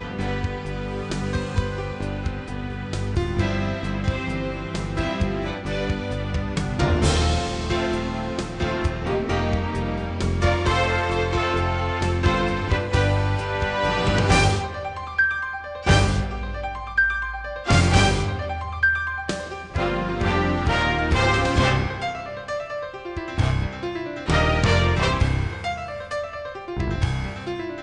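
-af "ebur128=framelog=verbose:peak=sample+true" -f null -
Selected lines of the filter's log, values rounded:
Integrated loudness:
  I:         -23.5 LUFS
  Threshold: -33.5 LUFS
Loudness range:
  LRA:         4.8 LU
  Threshold: -43.3 LUFS
  LRA low:   -26.4 LUFS
  LRA high:  -21.7 LUFS
Sample peak:
  Peak:       -6.5 dBFS
True peak:
  Peak:       -6.5 dBFS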